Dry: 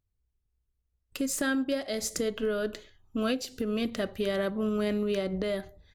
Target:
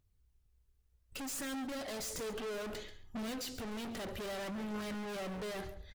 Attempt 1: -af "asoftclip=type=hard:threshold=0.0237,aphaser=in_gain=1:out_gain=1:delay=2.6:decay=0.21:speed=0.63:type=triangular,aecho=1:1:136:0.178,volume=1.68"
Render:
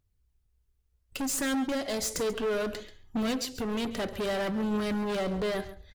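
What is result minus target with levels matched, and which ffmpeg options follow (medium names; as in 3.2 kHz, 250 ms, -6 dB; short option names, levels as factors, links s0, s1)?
hard clipper: distortion -5 dB
-af "asoftclip=type=hard:threshold=0.00596,aphaser=in_gain=1:out_gain=1:delay=2.6:decay=0.21:speed=0.63:type=triangular,aecho=1:1:136:0.178,volume=1.68"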